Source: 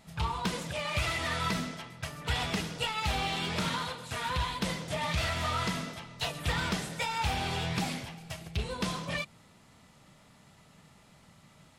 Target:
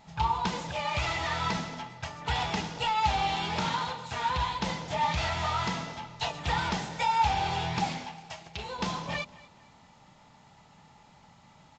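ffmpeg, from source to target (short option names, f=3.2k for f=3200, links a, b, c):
-filter_complex "[0:a]asettb=1/sr,asplit=3[a][b][c];[a]atrim=end=7.984[d];[b]atrim=start=7.98:end=8.79,asetpts=PTS-STARTPTS,afade=t=in:d=0.004:c=qsin,afade=t=out:st=0.806:d=0.004:c=qsin,lowshelf=f=260:g=-11.5[e];[c]atrim=start=8.786[f];[d][e]acrossfade=d=0.004:c1=hsin:c2=qsin[g];[g][f]acrossfade=d=0.004:c1=qsin:c2=hsin,asplit=2[h][i];[i]aecho=0:1:233|466|699:0.0944|0.0321|0.0109[j];[h][j]amix=inputs=2:normalize=0,aresample=16000,aresample=44100,equalizer=f=860:w=4.9:g=12.5,bandreject=f=49.73:t=h:w=4,bandreject=f=99.46:t=h:w=4,bandreject=f=149.19:t=h:w=4,bandreject=f=198.92:t=h:w=4,bandreject=f=248.65:t=h:w=4,bandreject=f=298.38:t=h:w=4,bandreject=f=348.11:t=h:w=4,bandreject=f=397.84:t=h:w=4,bandreject=f=447.57:t=h:w=4,bandreject=f=497.3:t=h:w=4,bandreject=f=547.03:t=h:w=4,bandreject=f=596.76:t=h:w=4,bandreject=f=646.49:t=h:w=4"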